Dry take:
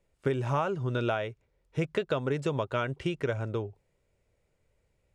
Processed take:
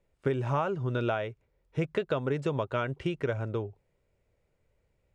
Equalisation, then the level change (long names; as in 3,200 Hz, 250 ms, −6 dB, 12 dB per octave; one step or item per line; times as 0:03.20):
high-shelf EQ 4,600 Hz −8 dB
0.0 dB